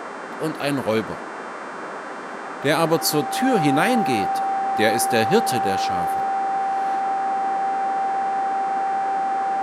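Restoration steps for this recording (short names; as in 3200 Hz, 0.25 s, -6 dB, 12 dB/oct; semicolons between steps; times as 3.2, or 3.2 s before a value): de-hum 392.7 Hz, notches 24; notch 780 Hz, Q 30; noise print and reduce 30 dB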